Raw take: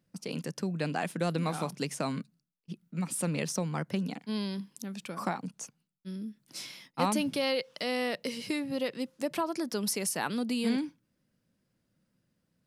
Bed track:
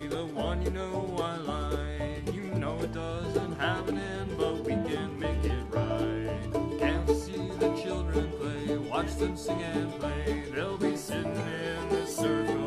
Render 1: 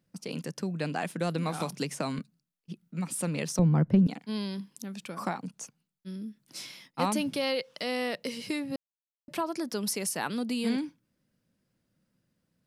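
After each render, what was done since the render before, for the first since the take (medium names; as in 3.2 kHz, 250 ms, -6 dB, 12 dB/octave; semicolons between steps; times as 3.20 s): 1.60–2.19 s: three bands compressed up and down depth 70%; 3.59–4.07 s: tilt EQ -4.5 dB/octave; 8.76–9.28 s: mute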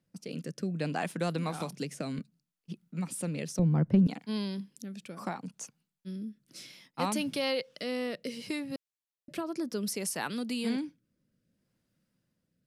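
rotary cabinet horn 0.65 Hz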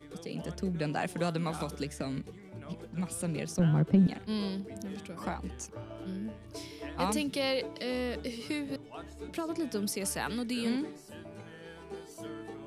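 add bed track -14.5 dB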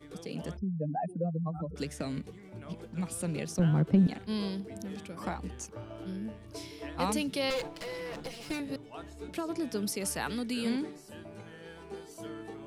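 0.57–1.76 s: spectral contrast enhancement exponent 3.1; 7.50–8.60 s: comb filter that takes the minimum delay 6 ms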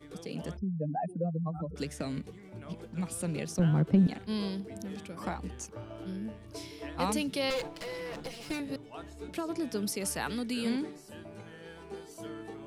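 no audible change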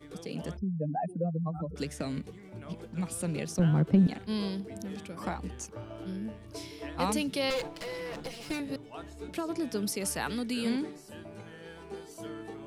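trim +1 dB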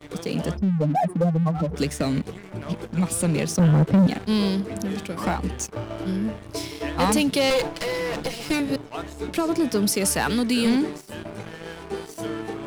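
waveshaping leveller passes 3; reverse; upward compressor, threshold -31 dBFS; reverse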